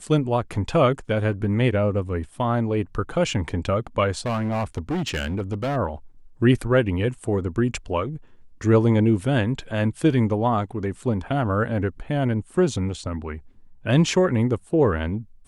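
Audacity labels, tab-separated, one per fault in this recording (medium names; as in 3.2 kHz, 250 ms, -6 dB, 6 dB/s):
4.260000	5.770000	clipped -21.5 dBFS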